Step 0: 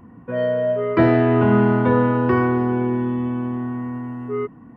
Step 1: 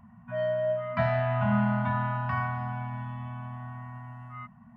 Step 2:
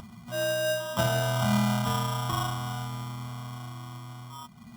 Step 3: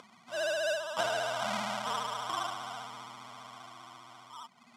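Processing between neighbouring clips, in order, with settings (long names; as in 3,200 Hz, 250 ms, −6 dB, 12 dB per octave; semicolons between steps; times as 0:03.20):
brick-wall band-stop 240–590 Hz; level −7 dB
upward compression, threshold −39 dBFS; sample-rate reduction 2,200 Hz, jitter 0%
pitch vibrato 15 Hz 100 cents; band-pass filter 480–7,200 Hz; level −2.5 dB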